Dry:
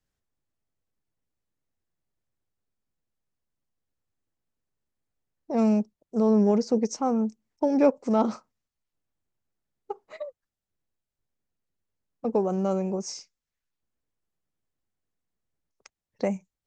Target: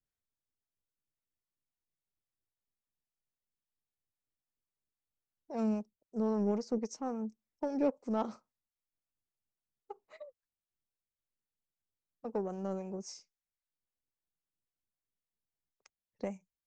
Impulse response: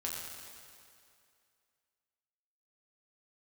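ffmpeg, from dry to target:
-filter_complex "[0:a]aeval=exprs='0.398*(cos(1*acos(clip(val(0)/0.398,-1,1)))-cos(1*PI/2))+0.0126*(cos(7*acos(clip(val(0)/0.398,-1,1)))-cos(7*PI/2))':c=same,acrossover=split=510[s0][s1];[s0]aeval=exprs='val(0)*(1-0.5/2+0.5/2*cos(2*PI*3.7*n/s))':c=same[s2];[s1]aeval=exprs='val(0)*(1-0.5/2-0.5/2*cos(2*PI*3.7*n/s))':c=same[s3];[s2][s3]amix=inputs=2:normalize=0,volume=0.398"

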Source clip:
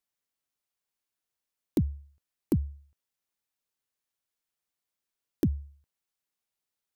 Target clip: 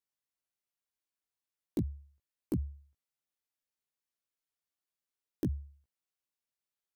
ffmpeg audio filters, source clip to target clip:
-af "flanger=delay=16:depth=2.1:speed=0.36,volume=0.668"

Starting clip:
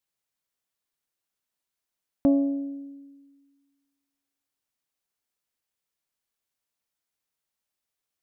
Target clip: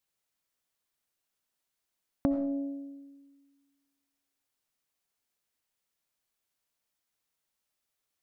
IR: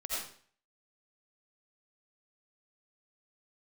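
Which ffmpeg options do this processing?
-filter_complex "[0:a]acompressor=threshold=0.0447:ratio=6,asplit=2[s0][s1];[1:a]atrim=start_sample=2205[s2];[s1][s2]afir=irnorm=-1:irlink=0,volume=0.282[s3];[s0][s3]amix=inputs=2:normalize=0"

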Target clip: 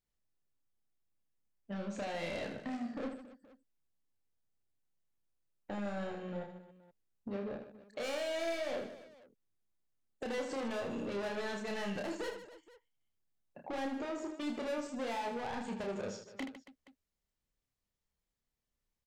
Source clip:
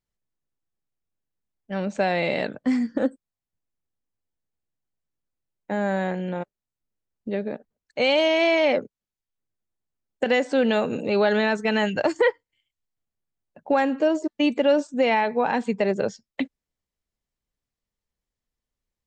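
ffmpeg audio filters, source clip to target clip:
-af "asoftclip=type=tanh:threshold=0.0447,acompressor=threshold=0.0178:ratio=6,aecho=1:1:30|78|154.8|277.7|474.3:0.631|0.398|0.251|0.158|0.1,volume=0.596"

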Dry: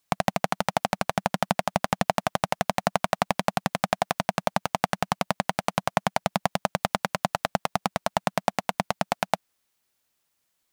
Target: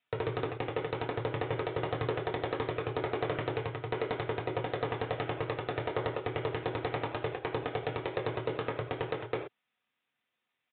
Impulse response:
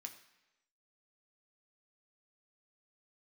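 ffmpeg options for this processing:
-filter_complex "[0:a]asetrate=26222,aresample=44100,atempo=1.68179[s0];[1:a]atrim=start_sample=2205,atrim=end_sample=6174[s1];[s0][s1]afir=irnorm=-1:irlink=0,aresample=8000,asoftclip=type=tanh:threshold=0.0596,aresample=44100,volume=1.33"

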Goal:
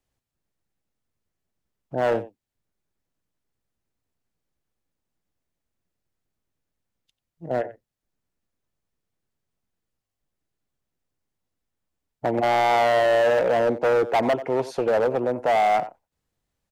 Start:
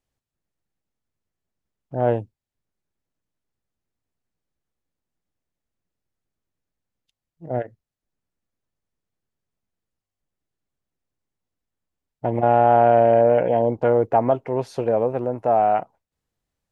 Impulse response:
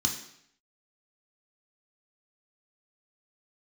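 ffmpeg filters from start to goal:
-filter_complex "[0:a]asplit=2[s0][s1];[s1]adelay=90,highpass=300,lowpass=3400,asoftclip=type=hard:threshold=0.188,volume=0.178[s2];[s0][s2]amix=inputs=2:normalize=0,acrossover=split=190|590[s3][s4][s5];[s3]acompressor=threshold=0.00708:ratio=6[s6];[s6][s4][s5]amix=inputs=3:normalize=0,asoftclip=type=hard:threshold=0.119,volume=1.26"

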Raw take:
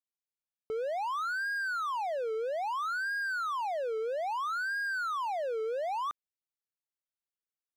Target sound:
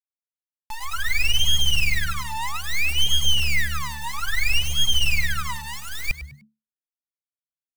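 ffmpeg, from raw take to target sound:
-filter_complex "[0:a]highpass=360,acrossover=split=540|870[s0][s1][s2];[s2]dynaudnorm=f=160:g=9:m=5.01[s3];[s0][s1][s3]amix=inputs=3:normalize=0,acrusher=bits=5:mix=0:aa=0.000001,flanger=delay=1.3:depth=7.4:regen=1:speed=0.33:shape=triangular,aeval=exprs='abs(val(0))':c=same,asplit=4[s4][s5][s6][s7];[s5]adelay=100,afreqshift=-73,volume=0.224[s8];[s6]adelay=200,afreqshift=-146,volume=0.0716[s9];[s7]adelay=300,afreqshift=-219,volume=0.0229[s10];[s4][s8][s9][s10]amix=inputs=4:normalize=0,volume=2.11"

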